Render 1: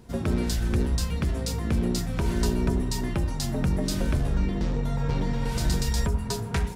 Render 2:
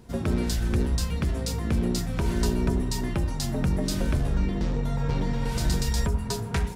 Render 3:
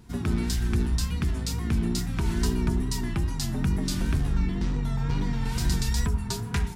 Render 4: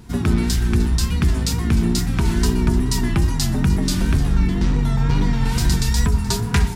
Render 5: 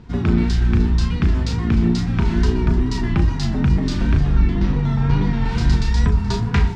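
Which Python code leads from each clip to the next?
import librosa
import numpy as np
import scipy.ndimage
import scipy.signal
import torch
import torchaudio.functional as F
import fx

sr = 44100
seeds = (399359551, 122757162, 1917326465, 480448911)

y1 = x
y2 = fx.peak_eq(y1, sr, hz=550.0, db=-15.0, octaves=0.55)
y2 = fx.wow_flutter(y2, sr, seeds[0], rate_hz=2.1, depth_cents=62.0)
y3 = fx.rider(y2, sr, range_db=10, speed_s=0.5)
y3 = fx.echo_feedback(y3, sr, ms=303, feedback_pct=47, wet_db=-16.5)
y3 = y3 * librosa.db_to_amplitude(8.0)
y4 = fx.air_absorb(y3, sr, metres=170.0)
y4 = fx.doubler(y4, sr, ms=35.0, db=-7)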